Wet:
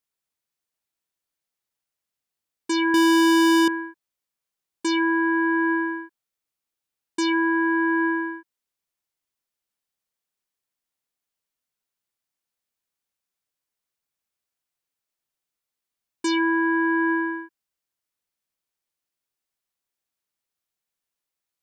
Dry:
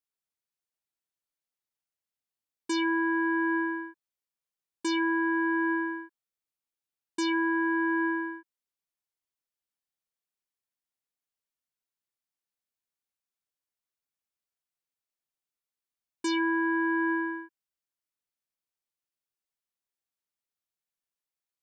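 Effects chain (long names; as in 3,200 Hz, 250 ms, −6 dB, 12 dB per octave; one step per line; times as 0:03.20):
0:02.94–0:03.68: leveller curve on the samples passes 5
level +5.5 dB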